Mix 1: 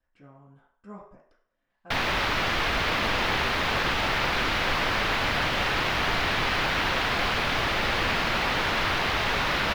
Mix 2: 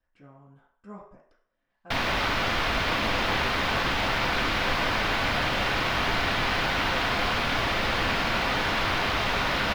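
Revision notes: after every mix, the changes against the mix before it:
background: send on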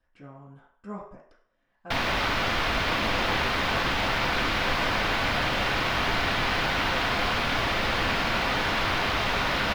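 speech +5.5 dB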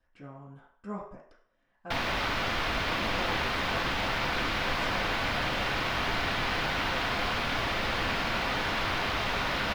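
background -4.0 dB

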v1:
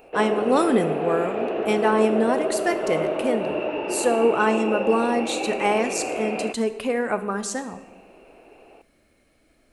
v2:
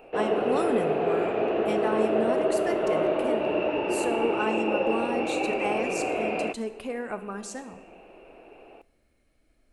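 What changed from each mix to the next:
speech -9.5 dB; master: add bass shelf 76 Hz +12 dB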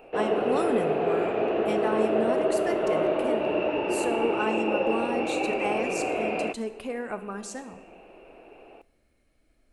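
no change

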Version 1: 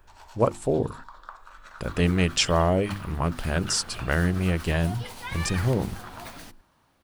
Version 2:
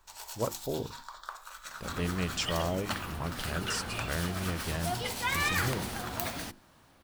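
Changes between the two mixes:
speech -10.5 dB; first sound: remove band-pass filter 900 Hz, Q 0.61; second sound +5.5 dB

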